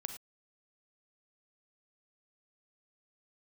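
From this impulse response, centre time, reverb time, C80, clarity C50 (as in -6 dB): 12 ms, no single decay rate, 11.5 dB, 8.5 dB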